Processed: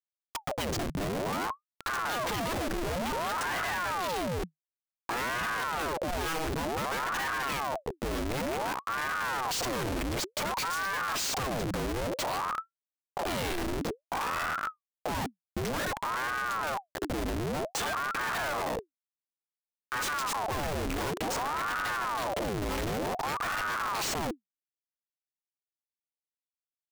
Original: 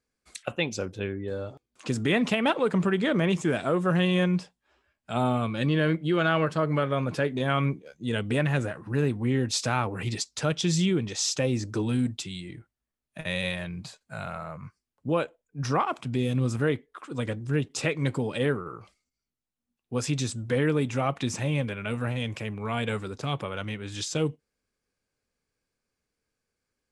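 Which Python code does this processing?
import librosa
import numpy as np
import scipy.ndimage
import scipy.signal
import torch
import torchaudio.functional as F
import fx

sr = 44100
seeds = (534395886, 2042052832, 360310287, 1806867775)

y = fx.schmitt(x, sr, flips_db=-37.0)
y = fx.ring_lfo(y, sr, carrier_hz=760.0, swing_pct=80, hz=0.55)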